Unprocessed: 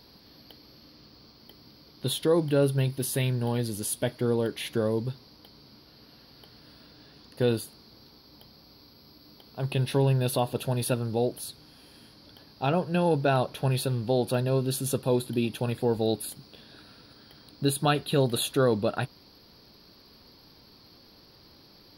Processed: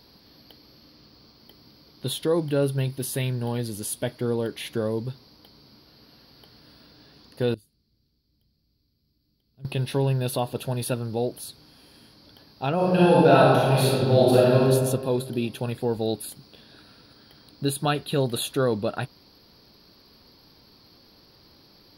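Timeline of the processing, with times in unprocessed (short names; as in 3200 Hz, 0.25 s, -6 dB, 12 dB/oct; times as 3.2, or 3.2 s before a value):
7.54–9.65 passive tone stack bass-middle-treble 10-0-1
12.75–14.62 reverb throw, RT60 1.6 s, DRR -8 dB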